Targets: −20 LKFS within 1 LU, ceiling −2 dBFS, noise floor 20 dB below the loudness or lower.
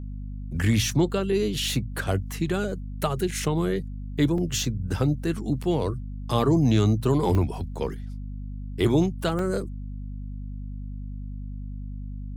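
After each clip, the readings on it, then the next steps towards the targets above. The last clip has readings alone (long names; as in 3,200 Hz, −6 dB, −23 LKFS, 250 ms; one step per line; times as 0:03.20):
number of dropouts 4; longest dropout 2.4 ms; mains hum 50 Hz; hum harmonics up to 250 Hz; level of the hum −32 dBFS; integrated loudness −25.5 LKFS; sample peak −9.5 dBFS; target loudness −20.0 LKFS
→ repair the gap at 0:03.31/0:04.38/0:07.35/0:09.39, 2.4 ms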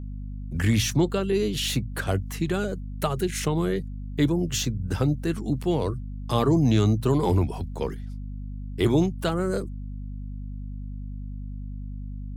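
number of dropouts 0; mains hum 50 Hz; hum harmonics up to 250 Hz; level of the hum −32 dBFS
→ mains-hum notches 50/100/150/200/250 Hz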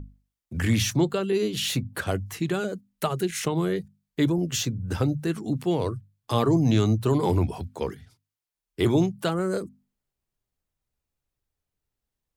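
mains hum none found; integrated loudness −26.0 LKFS; sample peak −10.5 dBFS; target loudness −20.0 LKFS
→ level +6 dB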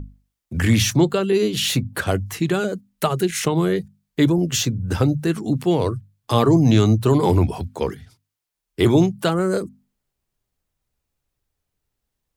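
integrated loudness −20.0 LKFS; sample peak −4.5 dBFS; background noise floor −81 dBFS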